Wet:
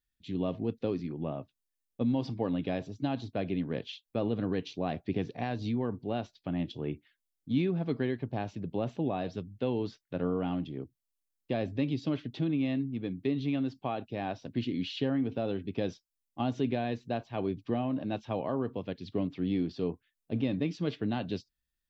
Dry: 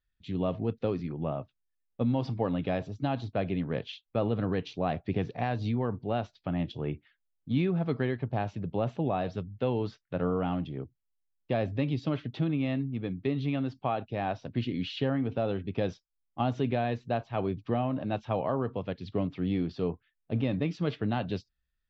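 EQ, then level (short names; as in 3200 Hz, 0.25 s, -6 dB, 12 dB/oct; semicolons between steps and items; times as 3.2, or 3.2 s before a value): bell 290 Hz +7.5 dB 1.4 oct; high shelf 3100 Hz +11 dB; notch 1300 Hz, Q 17; -6.5 dB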